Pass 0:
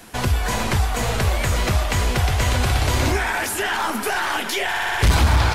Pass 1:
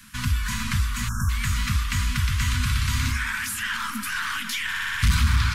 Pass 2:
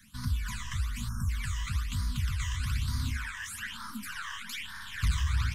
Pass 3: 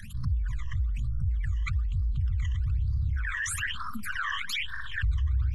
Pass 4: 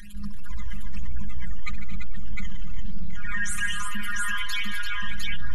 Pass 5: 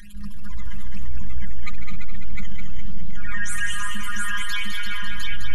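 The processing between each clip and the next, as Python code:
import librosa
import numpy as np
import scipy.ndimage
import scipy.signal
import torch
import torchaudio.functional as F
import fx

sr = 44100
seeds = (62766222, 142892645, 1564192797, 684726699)

y1 = scipy.signal.sosfilt(scipy.signal.cheby2(4, 40, [370.0, 780.0], 'bandstop', fs=sr, output='sos'), x)
y1 = fx.spec_erase(y1, sr, start_s=1.08, length_s=0.21, low_hz=1700.0, high_hz=5300.0)
y1 = fx.curve_eq(y1, sr, hz=(240.0, 510.0, 760.0), db=(0, -21, 0))
y1 = y1 * 10.0 ** (-3.5 / 20.0)
y2 = fx.phaser_stages(y1, sr, stages=12, low_hz=230.0, high_hz=2700.0, hz=1.1, feedback_pct=25)
y2 = y2 * 10.0 ** (-8.0 / 20.0)
y3 = fx.envelope_sharpen(y2, sr, power=2.0)
y3 = fx.env_flatten(y3, sr, amount_pct=50)
y4 = fx.robotise(y3, sr, hz=205.0)
y4 = fx.echo_multitap(y4, sr, ms=(67, 147, 222, 259, 339, 705), db=(-12.5, -12.5, -13.5, -14.5, -7.0, -3.5))
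y4 = fx.comb_cascade(y4, sr, direction='falling', hz=1.8)
y4 = y4 * 10.0 ** (6.5 / 20.0)
y5 = fx.echo_feedback(y4, sr, ms=208, feedback_pct=34, wet_db=-5.5)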